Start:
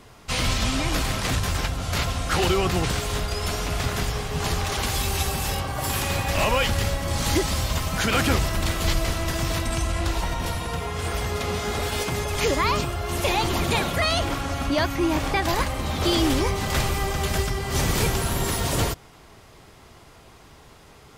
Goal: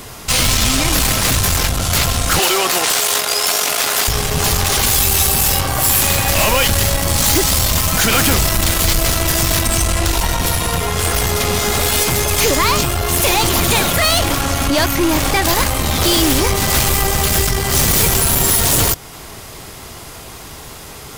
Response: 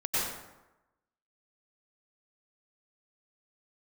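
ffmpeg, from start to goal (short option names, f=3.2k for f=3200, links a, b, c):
-filter_complex "[0:a]aeval=exprs='0.376*(cos(1*acos(clip(val(0)/0.376,-1,1)))-cos(1*PI/2))+0.0266*(cos(6*acos(clip(val(0)/0.376,-1,1)))-cos(6*PI/2))+0.0531*(cos(8*acos(clip(val(0)/0.376,-1,1)))-cos(8*PI/2))':c=same,asettb=1/sr,asplit=3[a][b][c];[a]atrim=end=2.394[d];[b]atrim=start=2.39:end=4.08,asetpts=PTS-STARTPTS,afade=t=in:d=0.004:c=qsin,afade=t=out:st=1.686:d=0.004:c=qsin,highpass=480[e];[c]atrim=start=4.076[f];[d][e]acrossfade=d=0.004:c1=hsin:c2=qsin[g];[g][f]acrossfade=d=0.004:c1=qsin:c2=hsin,asplit=2[h][i];[i]acompressor=threshold=-33dB:ratio=6,volume=-2dB[j];[h][j]amix=inputs=2:normalize=0,aemphasis=mode=production:type=50kf,asoftclip=type=tanh:threshold=-17dB,volume=8.5dB"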